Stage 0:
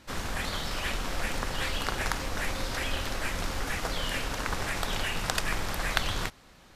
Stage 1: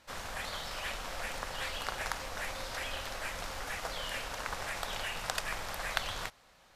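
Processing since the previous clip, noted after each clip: resonant low shelf 440 Hz -6.5 dB, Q 1.5; trim -5.5 dB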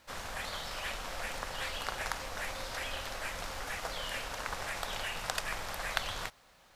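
word length cut 12-bit, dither none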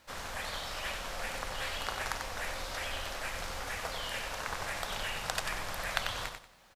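feedback delay 93 ms, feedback 25%, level -6.5 dB

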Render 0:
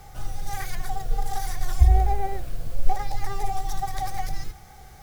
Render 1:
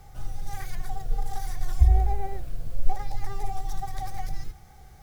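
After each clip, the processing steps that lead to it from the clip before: bass shelf 320 Hz +5.5 dB; trim -7 dB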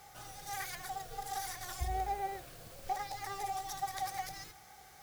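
high-pass 900 Hz 6 dB/octave; trim +3 dB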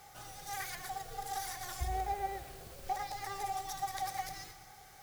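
two-band feedback delay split 440 Hz, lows 299 ms, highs 119 ms, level -13 dB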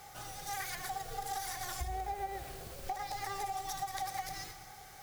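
compression, threshold -38 dBFS, peak gain reduction 8 dB; trim +3.5 dB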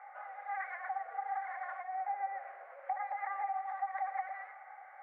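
Chebyshev band-pass 560–2100 Hz, order 4; trim +2.5 dB

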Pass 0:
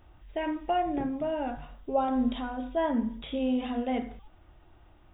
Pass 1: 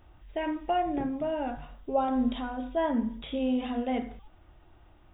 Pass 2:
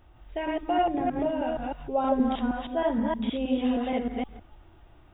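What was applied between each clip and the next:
no audible change
chunks repeated in reverse 157 ms, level 0 dB

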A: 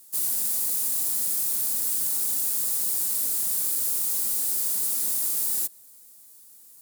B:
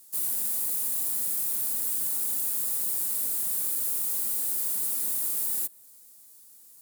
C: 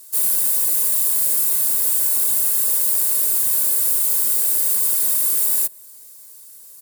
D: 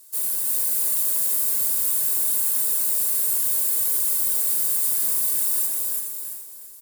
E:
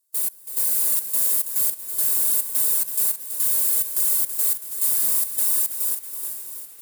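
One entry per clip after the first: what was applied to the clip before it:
dynamic bell 5.5 kHz, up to -6 dB, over -45 dBFS, Q 1.1; trim -2 dB
comb 1.9 ms, depth 72%; trim +8.5 dB
on a send: feedback delay 335 ms, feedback 33%, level -3.5 dB; on the sum: gated-style reverb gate 460 ms rising, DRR 5.5 dB; trim -6.5 dB
high-pass 93 Hz; trance gate ".x..xxx.xx" 106 bpm -24 dB; bit-crushed delay 327 ms, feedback 55%, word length 8-bit, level -9.5 dB; trim +1.5 dB

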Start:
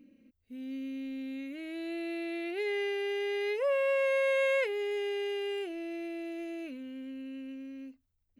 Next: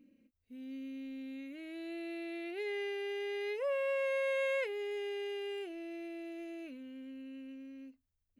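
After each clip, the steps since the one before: endings held to a fixed fall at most 380 dB/s; trim -5.5 dB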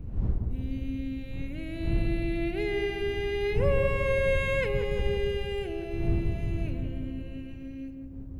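wind noise 83 Hz -40 dBFS; filtered feedback delay 175 ms, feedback 73%, low-pass 1.1 kHz, level -4 dB; trim +6.5 dB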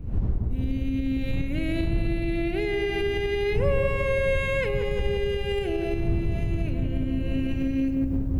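recorder AGC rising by 51 dB/s; trim +1.5 dB

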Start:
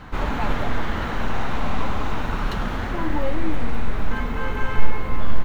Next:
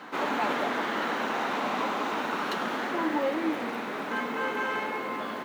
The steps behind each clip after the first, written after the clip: high-pass 250 Hz 24 dB/octave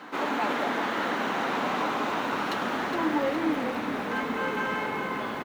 peaking EQ 290 Hz +3 dB 0.26 oct; on a send: frequency-shifting echo 415 ms, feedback 61%, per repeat -31 Hz, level -8 dB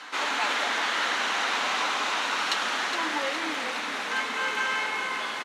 frequency weighting ITU-R 468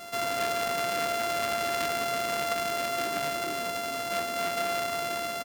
sorted samples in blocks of 64 samples; transformer saturation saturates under 1.8 kHz

